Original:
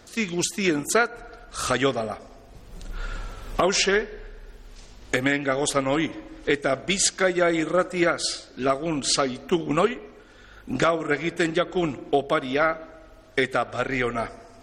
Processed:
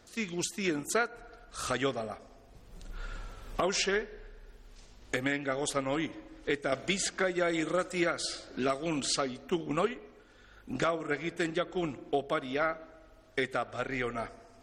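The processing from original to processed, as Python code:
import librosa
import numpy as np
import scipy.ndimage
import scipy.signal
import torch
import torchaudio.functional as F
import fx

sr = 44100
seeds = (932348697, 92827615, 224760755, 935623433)

y = np.clip(x, -10.0 ** (-9.5 / 20.0), 10.0 ** (-9.5 / 20.0))
y = fx.band_squash(y, sr, depth_pct=70, at=(6.72, 9.07))
y = y * librosa.db_to_amplitude(-8.5)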